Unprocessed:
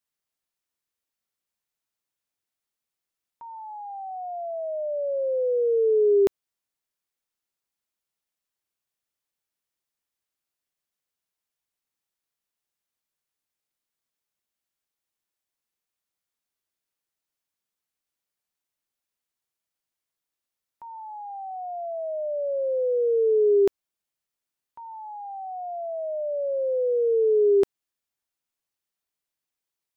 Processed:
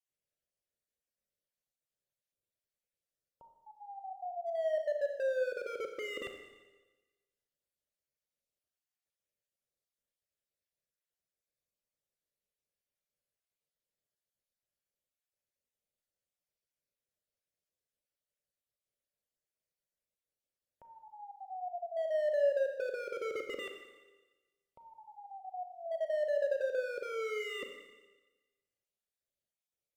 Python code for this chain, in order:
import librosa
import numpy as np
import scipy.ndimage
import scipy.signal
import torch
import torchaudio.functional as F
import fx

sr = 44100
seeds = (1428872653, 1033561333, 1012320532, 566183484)

y = fx.spec_dropout(x, sr, seeds[0], share_pct=29)
y = fx.env_lowpass_down(y, sr, base_hz=540.0, full_db=-25.0)
y = 10.0 ** (-29.0 / 20.0) * (np.abs((y / 10.0 ** (-29.0 / 20.0) + 3.0) % 4.0 - 2.0) - 1.0)
y = fx.curve_eq(y, sr, hz=(140.0, 300.0, 570.0, 970.0, 1600.0), db=(0, -7, 4, -19, -8))
y = fx.rev_schroeder(y, sr, rt60_s=1.2, comb_ms=29, drr_db=5.0)